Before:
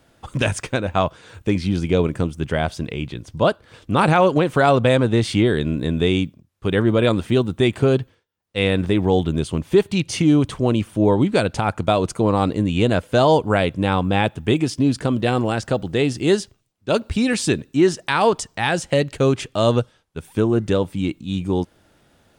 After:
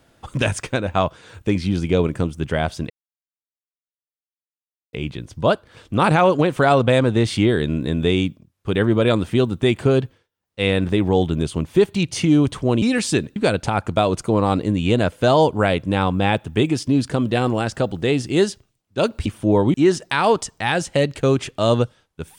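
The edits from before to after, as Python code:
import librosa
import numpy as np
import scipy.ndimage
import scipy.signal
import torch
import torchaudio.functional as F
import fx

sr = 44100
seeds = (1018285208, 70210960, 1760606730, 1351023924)

y = fx.edit(x, sr, fx.insert_silence(at_s=2.9, length_s=2.03),
    fx.swap(start_s=10.79, length_s=0.48, other_s=17.17, other_length_s=0.54), tone=tone)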